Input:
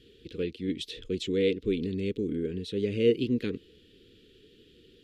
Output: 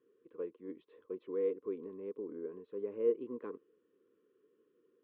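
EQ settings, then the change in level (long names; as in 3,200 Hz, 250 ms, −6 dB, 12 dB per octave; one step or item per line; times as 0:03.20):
high-pass filter 410 Hz 12 dB per octave
dynamic equaliser 690 Hz, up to +5 dB, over −44 dBFS, Q 0.74
transistor ladder low-pass 1,100 Hz, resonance 85%
+3.0 dB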